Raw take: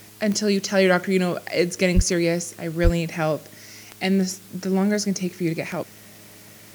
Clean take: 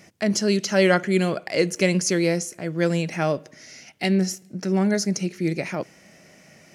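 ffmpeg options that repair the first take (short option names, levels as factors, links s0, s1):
-filter_complex "[0:a]adeclick=t=4,bandreject=f=105.8:t=h:w=4,bandreject=f=211.6:t=h:w=4,bandreject=f=317.4:t=h:w=4,bandreject=f=423.2:t=h:w=4,asplit=3[s0][s1][s2];[s0]afade=t=out:st=1.95:d=0.02[s3];[s1]highpass=f=140:w=0.5412,highpass=f=140:w=1.3066,afade=t=in:st=1.95:d=0.02,afade=t=out:st=2.07:d=0.02[s4];[s2]afade=t=in:st=2.07:d=0.02[s5];[s3][s4][s5]amix=inputs=3:normalize=0,asplit=3[s6][s7][s8];[s6]afade=t=out:st=2.83:d=0.02[s9];[s7]highpass=f=140:w=0.5412,highpass=f=140:w=1.3066,afade=t=in:st=2.83:d=0.02,afade=t=out:st=2.95:d=0.02[s10];[s8]afade=t=in:st=2.95:d=0.02[s11];[s9][s10][s11]amix=inputs=3:normalize=0,afwtdn=0.004"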